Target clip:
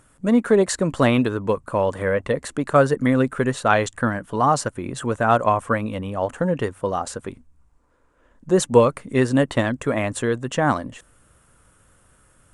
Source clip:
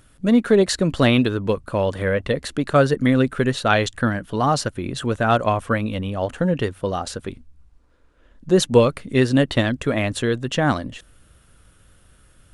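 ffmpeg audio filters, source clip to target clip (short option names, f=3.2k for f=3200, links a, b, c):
-af "equalizer=f=125:t=o:w=1:g=4,equalizer=f=250:t=o:w=1:g=4,equalizer=f=500:t=o:w=1:g=5,equalizer=f=1k:t=o:w=1:g=10,equalizer=f=2k:t=o:w=1:g=4,equalizer=f=4k:t=o:w=1:g=-4,equalizer=f=8k:t=o:w=1:g=11,volume=-7.5dB"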